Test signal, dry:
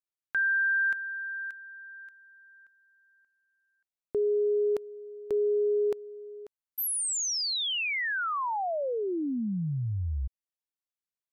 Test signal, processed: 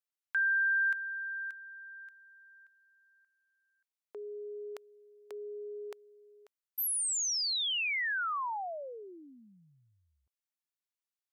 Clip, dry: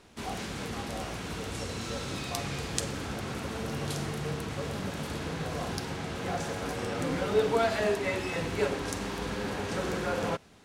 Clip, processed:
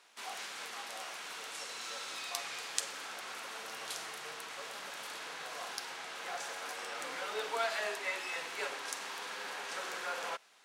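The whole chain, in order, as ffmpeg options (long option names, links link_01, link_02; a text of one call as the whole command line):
ffmpeg -i in.wav -af "highpass=930,volume=-2dB" out.wav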